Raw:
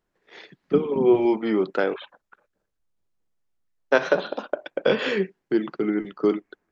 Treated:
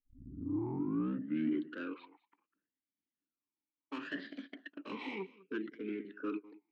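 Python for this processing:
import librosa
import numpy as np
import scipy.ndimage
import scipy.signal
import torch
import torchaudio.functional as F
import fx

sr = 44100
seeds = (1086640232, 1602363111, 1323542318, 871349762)

y = fx.tape_start_head(x, sr, length_s=2.01)
y = 10.0 ** (-20.5 / 20.0) * np.tanh(y / 10.0 ** (-20.5 / 20.0))
y = fx.formant_shift(y, sr, semitones=3)
y = y + 10.0 ** (-20.5 / 20.0) * np.pad(y, (int(201 * sr / 1000.0), 0))[:len(y)]
y = fx.vowel_sweep(y, sr, vowels='i-u', hz=0.68)
y = F.gain(torch.from_numpy(y), 1.5).numpy()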